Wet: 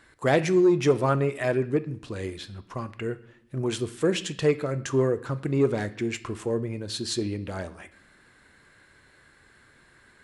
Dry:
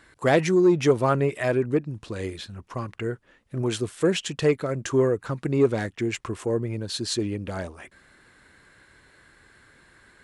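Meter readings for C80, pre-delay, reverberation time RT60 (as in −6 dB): 19.0 dB, 5 ms, 0.65 s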